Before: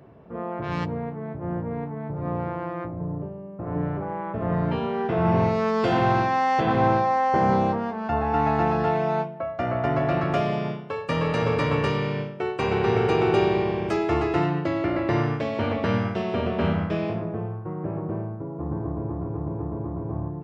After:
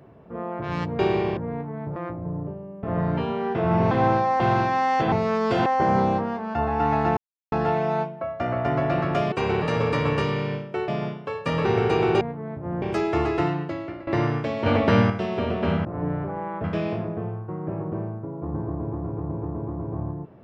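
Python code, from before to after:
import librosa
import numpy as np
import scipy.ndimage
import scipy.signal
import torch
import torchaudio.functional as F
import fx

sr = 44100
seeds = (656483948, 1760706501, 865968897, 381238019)

y = fx.edit(x, sr, fx.swap(start_s=0.99, length_s=0.61, other_s=13.4, other_length_s=0.38),
    fx.cut(start_s=2.19, length_s=0.52),
    fx.move(start_s=3.58, length_s=0.79, to_s=16.81),
    fx.swap(start_s=5.45, length_s=0.54, other_s=6.71, other_length_s=0.49),
    fx.insert_silence(at_s=8.71, length_s=0.35),
    fx.swap(start_s=10.51, length_s=0.77, other_s=12.54, other_length_s=0.3),
    fx.fade_out_to(start_s=14.34, length_s=0.69, floor_db=-18.0),
    fx.clip_gain(start_s=15.62, length_s=0.44, db=5.5), tone=tone)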